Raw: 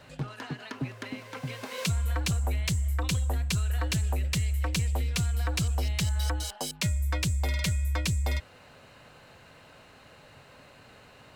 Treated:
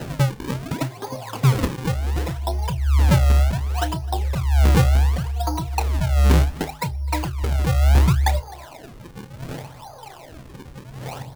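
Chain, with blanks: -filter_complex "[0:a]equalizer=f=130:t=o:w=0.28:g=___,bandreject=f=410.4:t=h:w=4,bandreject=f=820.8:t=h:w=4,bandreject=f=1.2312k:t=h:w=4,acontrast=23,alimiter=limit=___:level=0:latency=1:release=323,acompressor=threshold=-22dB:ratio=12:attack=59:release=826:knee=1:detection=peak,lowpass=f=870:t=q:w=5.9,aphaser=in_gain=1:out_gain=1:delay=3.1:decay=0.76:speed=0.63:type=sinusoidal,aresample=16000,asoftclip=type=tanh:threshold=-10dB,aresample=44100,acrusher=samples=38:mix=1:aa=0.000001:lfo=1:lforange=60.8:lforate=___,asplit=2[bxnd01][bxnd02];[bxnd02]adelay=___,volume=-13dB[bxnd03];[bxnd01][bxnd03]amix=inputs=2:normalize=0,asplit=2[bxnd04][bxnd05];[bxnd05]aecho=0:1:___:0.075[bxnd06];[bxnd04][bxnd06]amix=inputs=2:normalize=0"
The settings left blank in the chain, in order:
14.5, -14dB, 0.68, 30, 257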